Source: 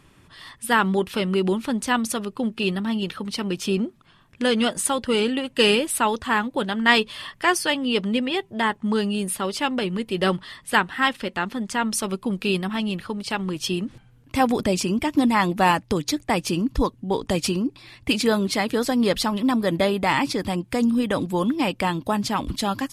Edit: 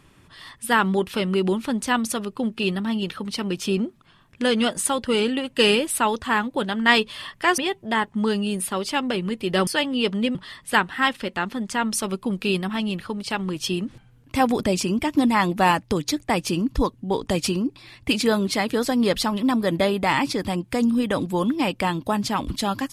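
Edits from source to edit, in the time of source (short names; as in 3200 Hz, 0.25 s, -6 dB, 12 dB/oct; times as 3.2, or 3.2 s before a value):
7.58–8.26 move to 10.35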